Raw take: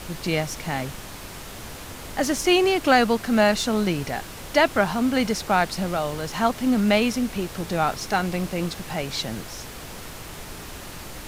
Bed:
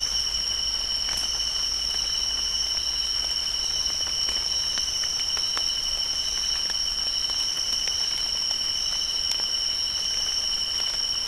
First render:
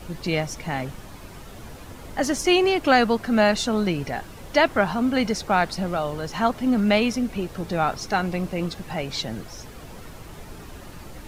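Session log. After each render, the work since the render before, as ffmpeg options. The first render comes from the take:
-af "afftdn=nr=9:nf=-38"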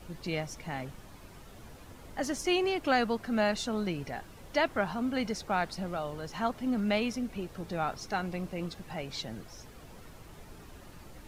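-af "volume=-9.5dB"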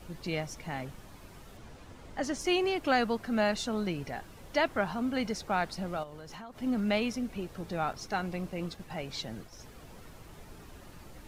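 -filter_complex "[0:a]asettb=1/sr,asplit=3[a][b][c];[a]atrim=end=1.574[d];[b]atrim=start=1.57:end=2.41,asetpts=PTS-STARTPTS,afade=t=in:d=0.004:c=qsin,afade=t=out:st=0.836:d=0.004:c=qsin,equalizer=f=13k:w=0.97:g=-11[e];[c]atrim=start=2.406[f];[d][e]acrossfade=d=0.004:c1=hsin:c2=qsin[g];[g][f]acrossfade=d=0.004:c1=qsin:c2=hsin,asettb=1/sr,asplit=3[h][i][j];[h]atrim=end=6.034[k];[i]atrim=start=6.03:end=6.62,asetpts=PTS-STARTPTS,afade=t=in:d=0.004:c=qsin,afade=t=out:st=0.586:d=0.004:c=qsin,acompressor=threshold=-41dB:ratio=10:attack=3.2:release=140:knee=1:detection=peak[l];[j]atrim=start=6.616[m];[k][l]acrossfade=d=0.004:c1=hsin:c2=qsin[n];[n][m]acrossfade=d=0.004:c1=qsin:c2=hsin,asettb=1/sr,asplit=3[o][p][q];[o]atrim=end=7.934[r];[p]atrim=start=7.93:end=9.6,asetpts=PTS-STARTPTS,afade=t=in:d=0.004:c=qsin,afade=t=out:st=1.666:d=0.004:c=qsin,agate=range=-33dB:threshold=-46dB:ratio=3:release=100:detection=peak[s];[q]atrim=start=9.596[t];[r][s]acrossfade=d=0.004:c1=hsin:c2=qsin[u];[u][t]acrossfade=d=0.004:c1=qsin:c2=hsin"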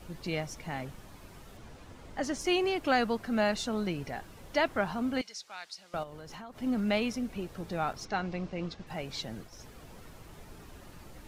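-filter_complex "[0:a]asettb=1/sr,asplit=3[a][b][c];[a]atrim=end=5.214[d];[b]atrim=start=5.21:end=5.94,asetpts=PTS-STARTPTS,afade=t=in:d=0.004:c=qsin,afade=t=out:st=0.726:d=0.004:c=qsin,bandpass=f=5.2k:t=q:w=1.1[e];[c]atrim=start=5.936[f];[d][e]acrossfade=d=0.004:c1=hsin:c2=qsin[g];[g][f]acrossfade=d=0.004:c1=qsin:c2=hsin,asettb=1/sr,asplit=3[h][i][j];[h]atrim=end=8.054[k];[i]atrim=start=8.05:end=8.87,asetpts=PTS-STARTPTS,afade=t=in:d=0.004:c=qsin,afade=t=out:st=0.816:d=0.004:c=qsin,lowpass=f=6.2k:w=0.5412,lowpass=f=6.2k:w=1.3066[l];[j]atrim=start=8.866[m];[k][l]acrossfade=d=0.004:c1=hsin:c2=qsin[n];[n][m]acrossfade=d=0.004:c1=qsin:c2=hsin"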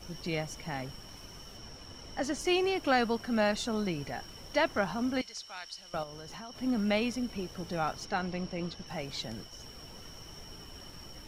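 -filter_complex "[1:a]volume=-26dB[a];[0:a][a]amix=inputs=2:normalize=0"

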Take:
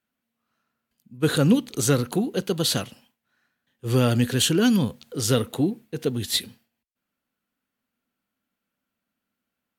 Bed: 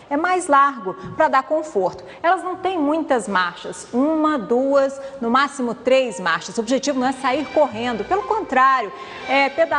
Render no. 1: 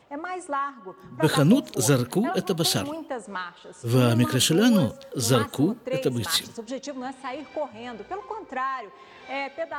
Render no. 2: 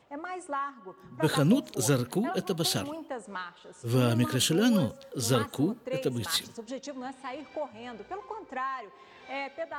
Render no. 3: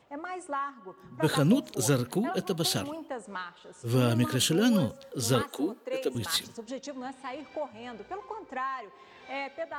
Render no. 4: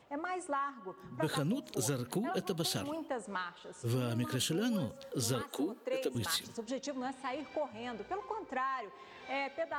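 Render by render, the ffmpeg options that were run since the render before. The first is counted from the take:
-filter_complex "[1:a]volume=-14dB[a];[0:a][a]amix=inputs=2:normalize=0"
-af "volume=-5dB"
-filter_complex "[0:a]asettb=1/sr,asplit=3[a][b][c];[a]atrim=end=5.414[d];[b]atrim=start=5.41:end=6.15,asetpts=PTS-STARTPTS,afade=t=in:d=0.004:c=qsin,afade=t=out:st=0.736:d=0.004:c=qsin,highpass=f=280:w=0.5412,highpass=f=280:w=1.3066[e];[c]atrim=start=6.146[f];[d][e]acrossfade=d=0.004:c1=hsin:c2=qsin[g];[g][f]acrossfade=d=0.004:c1=qsin:c2=hsin"
-af "acompressor=threshold=-31dB:ratio=6"

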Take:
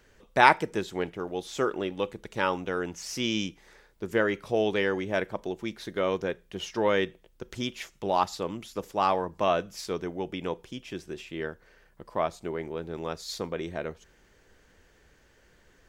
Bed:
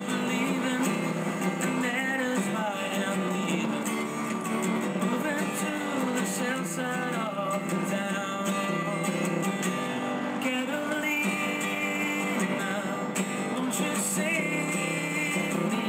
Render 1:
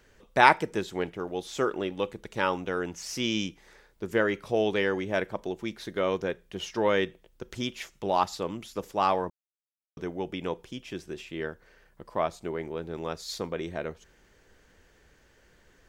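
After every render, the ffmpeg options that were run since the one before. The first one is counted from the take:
-filter_complex "[0:a]asplit=3[a][b][c];[a]atrim=end=9.3,asetpts=PTS-STARTPTS,afade=t=out:st=9.296:d=0.004:c=hsin[d];[b]atrim=start=9.3:end=9.97,asetpts=PTS-STARTPTS,volume=0[e];[c]atrim=start=9.97,asetpts=PTS-STARTPTS,afade=t=in:d=0.004:c=hsin[f];[d][e][f]concat=n=3:v=0:a=1"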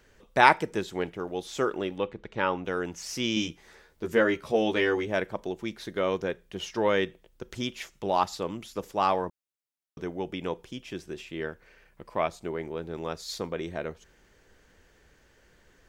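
-filter_complex "[0:a]asettb=1/sr,asplit=3[a][b][c];[a]atrim=end=1.984[d];[b]atrim=start=1.98:end=2.65,asetpts=PTS-STARTPTS,afade=t=in:d=0.004:c=qsin,afade=t=out:st=0.666:d=0.004:c=qsin,lowpass=3.2k[e];[c]atrim=start=2.646[f];[d][e]acrossfade=d=0.004:c1=hsin:c2=qsin[g];[g][f]acrossfade=d=0.004:c1=qsin:c2=hsin,asettb=1/sr,asplit=3[h][i][j];[h]atrim=end=3.354[k];[i]atrim=start=3.35:end=5.07,asetpts=PTS-STARTPTS,afade=t=in:d=0.004:c=qsin,afade=t=out:st=1.716:d=0.004:c=qsin,asplit=2[l][m];[m]adelay=13,volume=-2.5dB[n];[l][n]amix=inputs=2:normalize=0,atrim=end_sample=75852[o];[j]atrim=start=5.066[p];[k][o]acrossfade=d=0.004:c1=hsin:c2=qsin[q];[q][p]acrossfade=d=0.004:c1=qsin:c2=hsin,asettb=1/sr,asplit=3[r][s][t];[r]atrim=end=11.474[u];[s]atrim=start=11.47:end=12.28,asetpts=PTS-STARTPTS,afade=t=in:d=0.004:c=qsin,afade=t=out:st=0.806:d=0.004:c=qsin,equalizer=f=2.4k:w=3.3:g=8[v];[t]atrim=start=12.276[w];[u][v]acrossfade=d=0.004:c1=hsin:c2=qsin[x];[x][w]acrossfade=d=0.004:c1=qsin:c2=hsin"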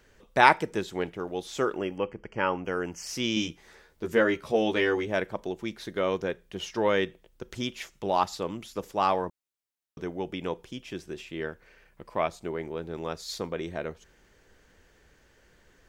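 -filter_complex "[0:a]asettb=1/sr,asplit=3[a][b][c];[a]atrim=end=1.774[d];[b]atrim=start=1.77:end=3.07,asetpts=PTS-STARTPTS,afade=t=in:d=0.004:c=qsin,afade=t=out:st=1.296:d=0.004:c=qsin,asuperstop=centerf=3800:order=12:qfactor=3.2[e];[c]atrim=start=3.066[f];[d][e]acrossfade=d=0.004:c1=hsin:c2=qsin[g];[g][f]acrossfade=d=0.004:c1=qsin:c2=hsin"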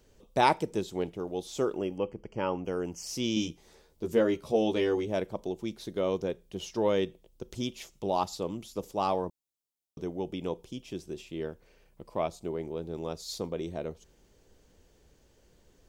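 -af "equalizer=f=1.7k:w=1.1:g=-13.5"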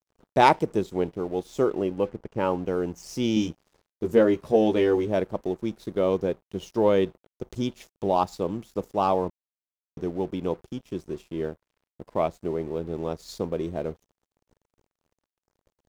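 -filter_complex "[0:a]asplit=2[a][b];[b]adynamicsmooth=sensitivity=1.5:basefreq=1.9k,volume=1dB[c];[a][c]amix=inputs=2:normalize=0,aeval=exprs='sgn(val(0))*max(abs(val(0))-0.00335,0)':c=same"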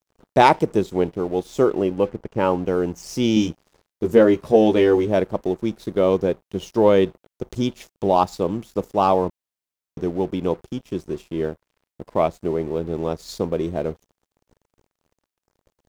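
-af "volume=5.5dB,alimiter=limit=-3dB:level=0:latency=1"

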